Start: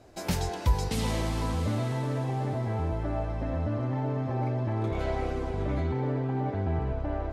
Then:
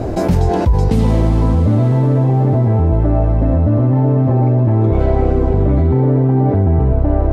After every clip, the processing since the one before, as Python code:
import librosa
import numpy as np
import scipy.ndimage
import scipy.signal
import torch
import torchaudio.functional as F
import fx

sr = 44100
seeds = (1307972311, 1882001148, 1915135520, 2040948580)

y = fx.tilt_shelf(x, sr, db=9.5, hz=1100.0)
y = fx.env_flatten(y, sr, amount_pct=70)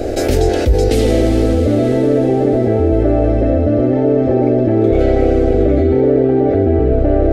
y = fx.spec_clip(x, sr, under_db=12)
y = fx.fixed_phaser(y, sr, hz=410.0, stages=4)
y = y * 10.0 ** (3.5 / 20.0)